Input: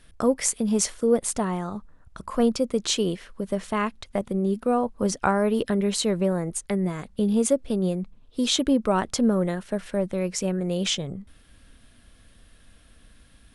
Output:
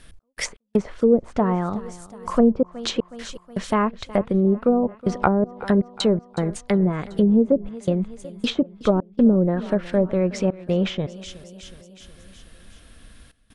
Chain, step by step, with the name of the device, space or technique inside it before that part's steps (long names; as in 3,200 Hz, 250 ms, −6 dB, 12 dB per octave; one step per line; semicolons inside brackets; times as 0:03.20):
trance gate with a delay (gate pattern "x.x.xxxxxxx.xx." 80 BPM −60 dB; repeating echo 368 ms, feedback 59%, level −19.5 dB)
treble cut that deepens with the level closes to 480 Hz, closed at −18 dBFS
level +6 dB